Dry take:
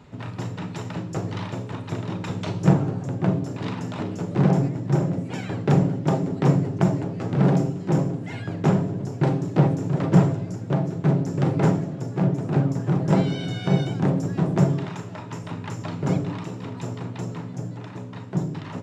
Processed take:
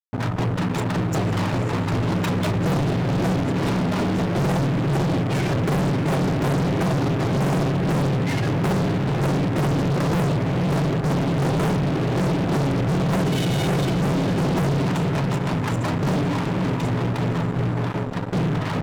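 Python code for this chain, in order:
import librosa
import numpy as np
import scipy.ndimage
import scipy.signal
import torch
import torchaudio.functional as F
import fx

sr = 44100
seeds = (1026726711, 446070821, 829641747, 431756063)

y = fx.spec_gate(x, sr, threshold_db=-25, keep='strong')
y = fx.echo_diffused(y, sr, ms=520, feedback_pct=43, wet_db=-10)
y = fx.fuzz(y, sr, gain_db=37.0, gate_db=-38.0)
y = y * 10.0 ** (-6.0 / 20.0)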